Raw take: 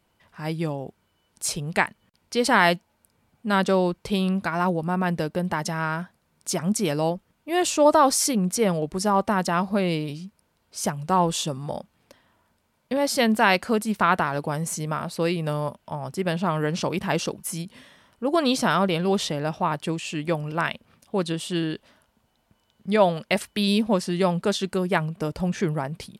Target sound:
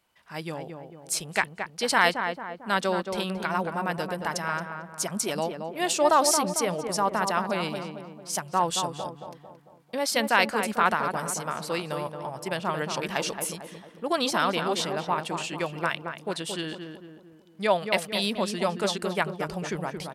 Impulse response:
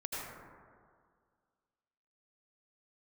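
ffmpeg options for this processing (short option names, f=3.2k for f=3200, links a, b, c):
-filter_complex "[0:a]lowshelf=f=450:g=-11.5,atempo=1.3,asplit=2[a][b];[b]adelay=224,lowpass=f=1.4k:p=1,volume=-5.5dB,asplit=2[c][d];[d]adelay=224,lowpass=f=1.4k:p=1,volume=0.51,asplit=2[e][f];[f]adelay=224,lowpass=f=1.4k:p=1,volume=0.51,asplit=2[g][h];[h]adelay=224,lowpass=f=1.4k:p=1,volume=0.51,asplit=2[i][j];[j]adelay=224,lowpass=f=1.4k:p=1,volume=0.51,asplit=2[k][l];[l]adelay=224,lowpass=f=1.4k:p=1,volume=0.51[m];[a][c][e][g][i][k][m]amix=inputs=7:normalize=0"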